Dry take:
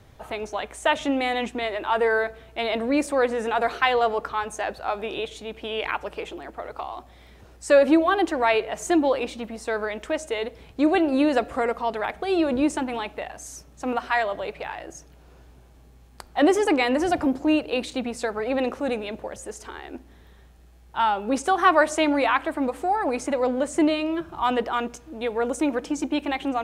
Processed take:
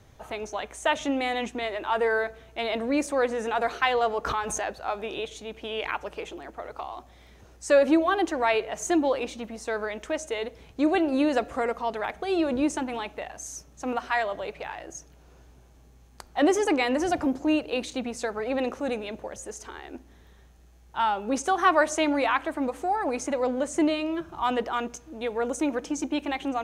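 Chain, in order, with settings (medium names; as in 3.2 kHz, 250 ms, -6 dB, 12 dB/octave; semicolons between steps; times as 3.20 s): peaking EQ 6.3 kHz +7 dB 0.27 oct; 4.25–4.74 s: swell ahead of each attack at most 21 dB/s; trim -3 dB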